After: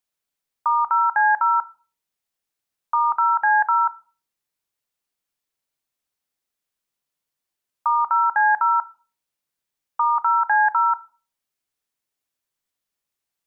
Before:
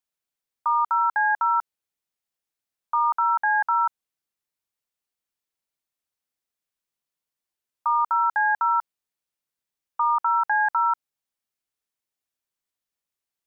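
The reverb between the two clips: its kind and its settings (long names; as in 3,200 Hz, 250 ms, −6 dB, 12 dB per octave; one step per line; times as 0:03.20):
rectangular room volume 270 cubic metres, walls furnished, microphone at 0.3 metres
level +3.5 dB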